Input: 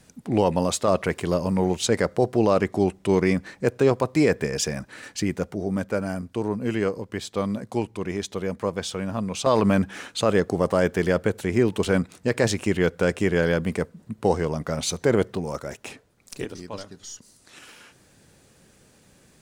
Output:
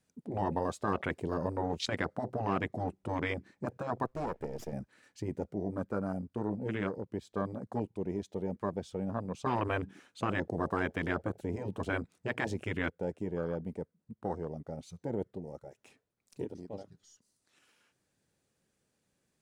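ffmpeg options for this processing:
ffmpeg -i in.wav -filter_complex "[0:a]asettb=1/sr,asplit=3[link_01][link_02][link_03];[link_01]atrim=end=4.064[link_04];[link_02]atrim=start=4.06:end=4.73,asetpts=PTS-STARTPTS,afade=type=in:duration=0.004:curve=qsin,afade=type=out:start_time=0.666:duration=0.004:curve=qsin,aeval=exprs='max(val(0),0)':channel_layout=same[link_05];[link_03]atrim=start=4.726[link_06];[link_04][link_05]acrossfade=duration=0.004:curve1=hsin:curve2=qsin[link_07];[link_07][link_06]acrossfade=duration=0.004:curve1=qsin:curve2=hsin,asplit=3[link_08][link_09][link_10];[link_08]atrim=end=12.902[link_11];[link_09]atrim=start=12.898:end=15.772,asetpts=PTS-STARTPTS,volume=-7dB[link_12];[link_10]atrim=start=15.768[link_13];[link_11][link_12]acrossfade=duration=0.004:curve1=hsin:curve2=hsin[link_14];[link_14][link_13]acrossfade=duration=0.004:curve1=hsin:curve2=hsin,afwtdn=0.0282,afftfilt=real='re*lt(hypot(re,im),0.447)':imag='im*lt(hypot(re,im),0.447)':win_size=1024:overlap=0.75,lowshelf=frequency=64:gain=-6,volume=-5.5dB" out.wav

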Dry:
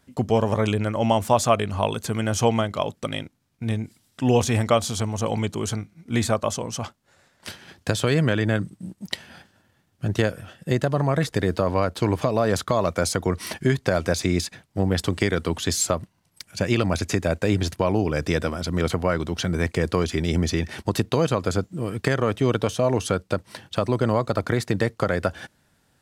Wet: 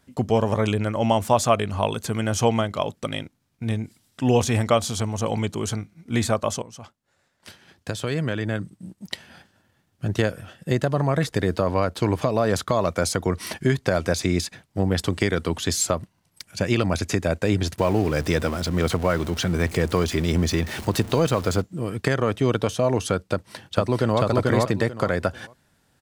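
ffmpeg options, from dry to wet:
ffmpeg -i in.wav -filter_complex "[0:a]asettb=1/sr,asplit=3[link_01][link_02][link_03];[link_01]atrim=end=17.784[link_04];[link_02]atrim=start=17.78:end=21.62,asetpts=PTS-STARTPTS,afade=type=in:duration=0.004:curve=qsin,afade=type=out:start_time=3.836:duration=0.004:curve=qsin,aeval=exprs='val(0)+0.5*0.0251*sgn(val(0))':channel_layout=same[link_05];[link_03]atrim=start=21.616[link_06];[link_04][link_05]acrossfade=duration=0.004:curve1=hsin:curve2=qsin[link_07];[link_07][link_06]acrossfade=duration=0.004:curve1=qsin:curve2=hsin,asplit=2[link_08][link_09];[link_09]afade=type=in:start_time=23.33:duration=0.01,afade=type=out:start_time=24.21:duration=0.01,aecho=0:1:440|880|1320:0.944061|0.188812|0.0377624[link_10];[link_08][link_10]amix=inputs=2:normalize=0,asplit=2[link_11][link_12];[link_11]atrim=end=6.62,asetpts=PTS-STARTPTS,afade=type=out:start_time=6.616:duration=0.004:curve=hsin:silence=0.237137[link_13];[link_12]atrim=start=6.62,asetpts=PTS-STARTPTS,afade=type=in:duration=3.77:silence=0.237137[link_14];[link_13][link_14]concat=n=2:v=0:a=1" out.wav

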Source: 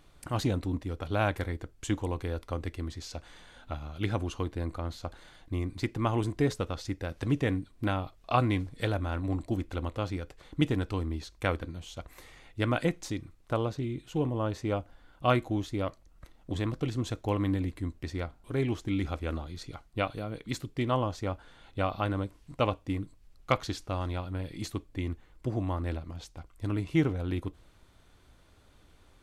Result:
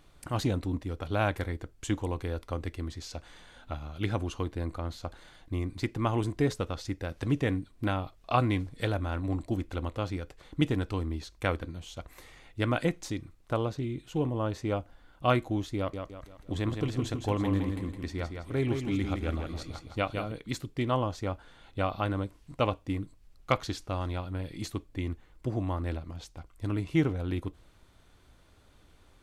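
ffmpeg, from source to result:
ffmpeg -i in.wav -filter_complex "[0:a]asettb=1/sr,asplit=3[link_01][link_02][link_03];[link_01]atrim=end=15.774[link_04];[link_02]atrim=start=15.77:end=20.32,asetpts=PTS-STARTPTS,afade=type=in:duration=0.004:curve=qsin,afade=type=out:start_time=4.546:duration=0.004:curve=qsin,aecho=1:1:163|326|489|652|815:0.501|0.21|0.0884|0.0371|0.0156,atrim=end_sample=200655[link_05];[link_03]atrim=start=20.316[link_06];[link_04][link_05]acrossfade=duration=0.004:curve1=hsin:curve2=qsin[link_07];[link_07][link_06]acrossfade=duration=0.004:curve1=qsin:curve2=hsin" out.wav

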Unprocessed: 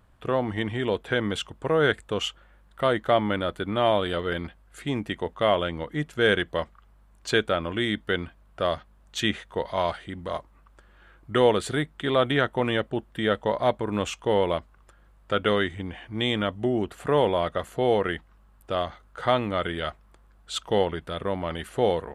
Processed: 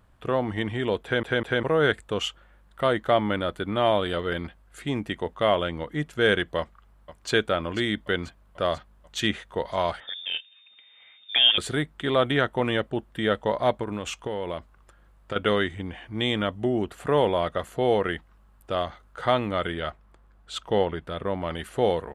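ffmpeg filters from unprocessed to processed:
ffmpeg -i in.wav -filter_complex "[0:a]asplit=2[link_01][link_02];[link_02]afade=type=in:start_time=6.59:duration=0.01,afade=type=out:start_time=7.32:duration=0.01,aecho=0:1:490|980|1470|1960|2450|2940|3430|3920|4410:0.237137|0.165996|0.116197|0.0813381|0.0569367|0.0398557|0.027899|0.0195293|0.0136705[link_03];[link_01][link_03]amix=inputs=2:normalize=0,asettb=1/sr,asplit=3[link_04][link_05][link_06];[link_04]atrim=end=10.004[link_07];[link_05]atrim=start=10:end=11.58,asetpts=PTS-STARTPTS,afade=type=in:duration=0.004:curve=qsin,afade=type=out:start_time=1.576:duration=0.004:curve=qsin,lowpass=frequency=3100:width_type=q:width=0.5098,lowpass=frequency=3100:width_type=q:width=0.6013,lowpass=frequency=3100:width_type=q:width=0.9,lowpass=frequency=3100:width_type=q:width=2.563,afreqshift=-3700[link_08];[link_06]atrim=start=11.576[link_09];[link_07][link_08]acrossfade=duration=0.004:curve1=hsin:curve2=qsin[link_10];[link_10][link_09]acrossfade=duration=0.004:curve1=qsin:curve2=hsin,asettb=1/sr,asplit=3[link_11][link_12][link_13];[link_11]atrim=end=13.834[link_14];[link_12]atrim=start=13.83:end=15.36,asetpts=PTS-STARTPTS,afade=type=in:duration=0.004:curve=qsin,afade=type=out:start_time=1.526:duration=0.004:curve=qsin,acompressor=threshold=-26dB:ratio=5:attack=3.2:release=140:knee=1:detection=peak[link_15];[link_13]atrim=start=15.356[link_16];[link_14][link_15]acrossfade=duration=0.004:curve1=hsin:curve2=qsin[link_17];[link_17][link_16]acrossfade=duration=0.004:curve1=qsin:curve2=hsin,asettb=1/sr,asplit=3[link_18][link_19][link_20];[link_18]atrim=end=19.744[link_21];[link_19]atrim=start=19.74:end=21.42,asetpts=PTS-STARTPTS,afade=type=in:duration=0.004:curve=qsin,afade=type=out:start_time=1.676:duration=0.004:curve=qsin,highshelf=frequency=4100:gain=-7[link_22];[link_20]atrim=start=21.416[link_23];[link_21][link_22]acrossfade=duration=0.004:curve1=hsin:curve2=qsin[link_24];[link_24][link_23]acrossfade=duration=0.004:curve1=qsin:curve2=hsin,asplit=4[link_25][link_26][link_27][link_28];[link_25]atrim=end=1.232[link_29];[link_26]atrim=start=1.028:end=1.232[link_30];[link_27]atrim=start=1.028:end=1.232[link_31];[link_28]atrim=start=1.628[link_32];[link_29][link_30]acrossfade=duration=0.004:curve1=hsin:curve2=hsin[link_33];[link_33][link_31]acrossfade=duration=0.004:curve1=hsin:curve2=hsin[link_34];[link_34][link_32]acrossfade=duration=0.004:curve1=hsin:curve2=hsin" out.wav

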